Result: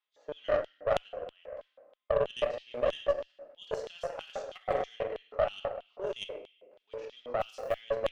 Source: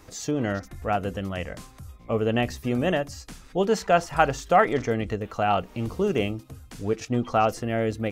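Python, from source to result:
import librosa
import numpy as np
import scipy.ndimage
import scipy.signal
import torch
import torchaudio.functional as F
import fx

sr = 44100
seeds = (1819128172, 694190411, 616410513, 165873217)

p1 = scipy.signal.sosfilt(scipy.signal.butter(2, 220.0, 'highpass', fs=sr, output='sos'), x)
p2 = fx.transient(p1, sr, attack_db=5, sustain_db=-9, at=(6.05, 6.66))
p3 = fx.env_lowpass(p2, sr, base_hz=900.0, full_db=-17.0)
p4 = p3 + fx.echo_single(p3, sr, ms=111, db=-21.5, dry=0)
p5 = fx.level_steps(p4, sr, step_db=15)
p6 = fx.room_shoebox(p5, sr, seeds[0], volume_m3=600.0, walls='mixed', distance_m=1.4)
p7 = fx.over_compress(p6, sr, threshold_db=-27.0, ratio=-1.0, at=(4.57, 5.3), fade=0.02)
p8 = fx.filter_lfo_highpass(p7, sr, shape='square', hz=3.1, low_hz=560.0, high_hz=3300.0, q=6.6)
p9 = fx.cheby_harmonics(p8, sr, harmonics=(2, 3, 7), levels_db=(-12, -23, -29), full_scale_db=-8.5)
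p10 = fx.quant_float(p9, sr, bits=4, at=(7.4, 7.8), fade=0.02)
y = p10 * 10.0 ** (-7.0 / 20.0)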